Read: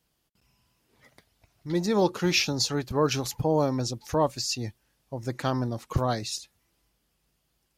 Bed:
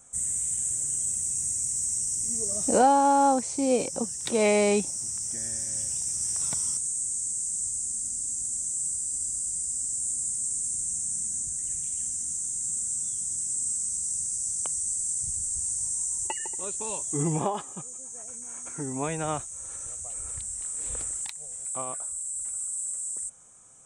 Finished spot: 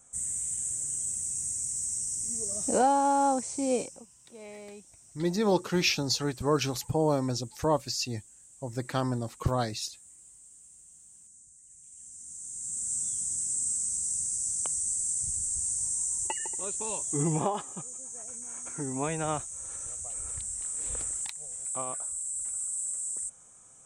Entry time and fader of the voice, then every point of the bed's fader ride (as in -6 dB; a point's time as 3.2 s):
3.50 s, -2.0 dB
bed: 3.79 s -4 dB
4.06 s -23.5 dB
11.67 s -23.5 dB
12.95 s -1 dB